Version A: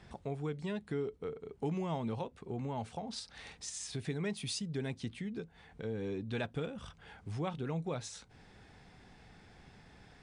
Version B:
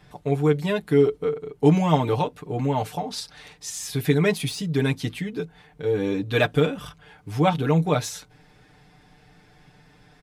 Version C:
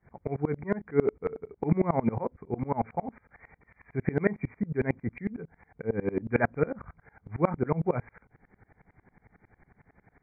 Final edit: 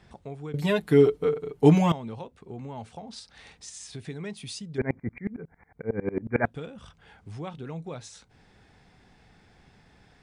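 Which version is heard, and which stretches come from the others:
A
0.54–1.92 s: from B
4.78–6.46 s: from C

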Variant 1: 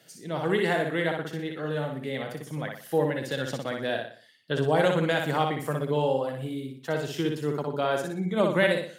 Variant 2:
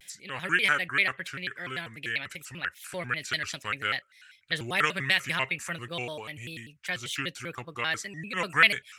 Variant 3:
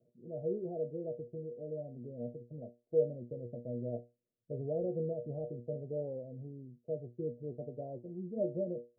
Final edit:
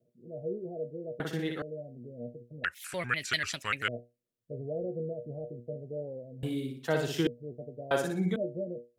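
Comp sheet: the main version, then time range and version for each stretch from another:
3
1.20–1.62 s: from 1
2.64–3.88 s: from 2
6.43–7.27 s: from 1
7.91–8.36 s: from 1

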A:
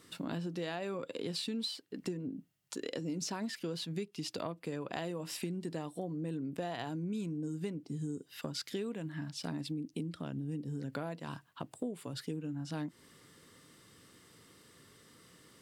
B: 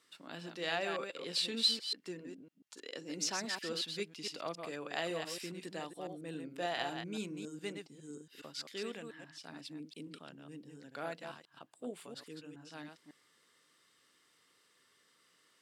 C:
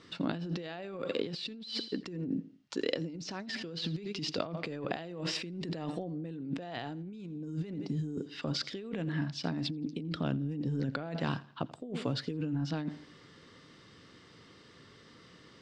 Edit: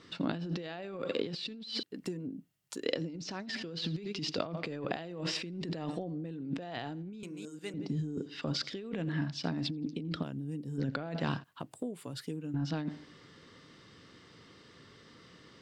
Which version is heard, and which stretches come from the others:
C
1.83–2.86 s: from A
7.23–7.74 s: from B
10.23–10.78 s: from A
11.44–12.54 s: from A

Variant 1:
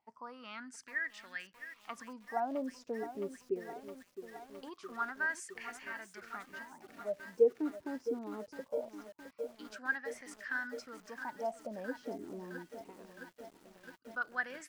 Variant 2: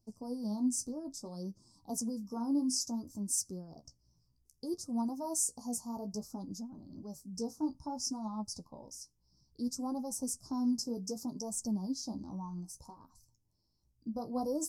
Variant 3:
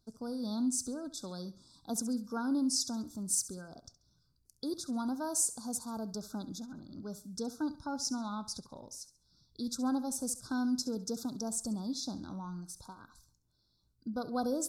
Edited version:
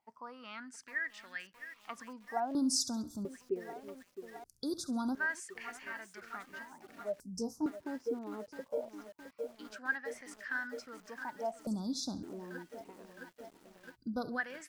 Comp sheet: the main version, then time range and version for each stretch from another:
1
2.55–3.25 s: from 3
4.44–5.15 s: from 3
7.20–7.66 s: from 2
11.67–12.23 s: from 3
13.94–14.36 s: from 3, crossfade 0.10 s

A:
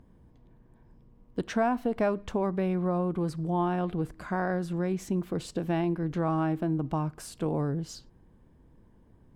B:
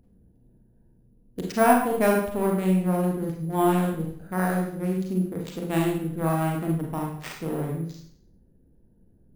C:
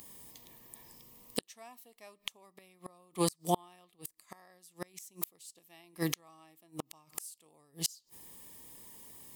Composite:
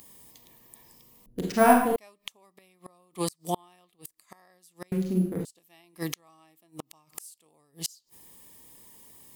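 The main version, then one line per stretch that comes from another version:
C
1.26–1.96 s: from B
4.92–5.45 s: from B
not used: A

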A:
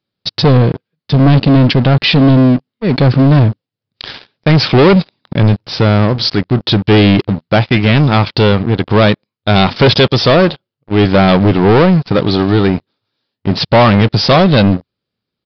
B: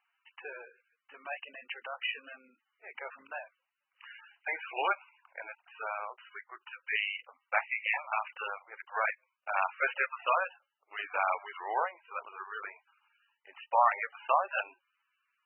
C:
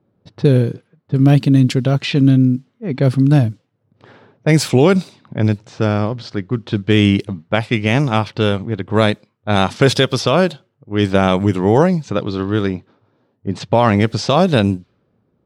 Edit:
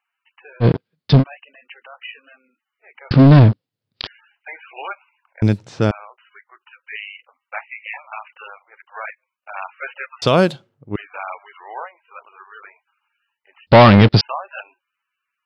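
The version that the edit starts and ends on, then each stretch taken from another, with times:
B
0.63–1.21 s: from A, crossfade 0.06 s
3.11–4.07 s: from A
5.42–5.91 s: from C
10.22–10.96 s: from C
13.67–14.21 s: from A

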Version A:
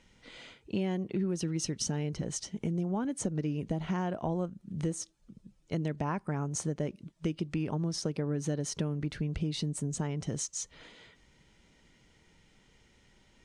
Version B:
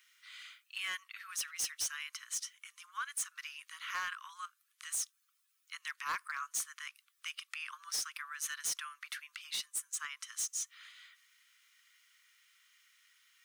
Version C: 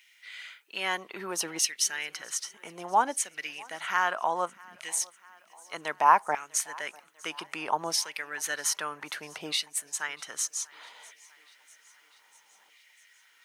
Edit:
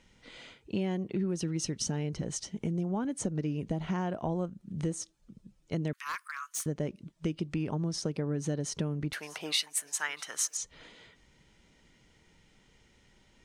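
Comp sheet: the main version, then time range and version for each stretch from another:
A
5.93–6.66 s: from B
9.13–10.57 s: from C

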